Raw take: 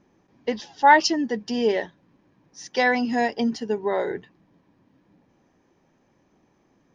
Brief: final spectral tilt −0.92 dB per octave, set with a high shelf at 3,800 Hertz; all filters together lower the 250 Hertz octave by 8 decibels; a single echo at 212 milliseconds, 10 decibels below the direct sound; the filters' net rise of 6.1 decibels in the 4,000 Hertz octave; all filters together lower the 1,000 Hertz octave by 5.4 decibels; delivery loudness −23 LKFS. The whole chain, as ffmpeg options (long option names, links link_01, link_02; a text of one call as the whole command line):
ffmpeg -i in.wav -af "equalizer=frequency=250:width_type=o:gain=-9,equalizer=frequency=1000:width_type=o:gain=-6.5,highshelf=frequency=3800:gain=6.5,equalizer=frequency=4000:width_type=o:gain=3.5,aecho=1:1:212:0.316,volume=1.5dB" out.wav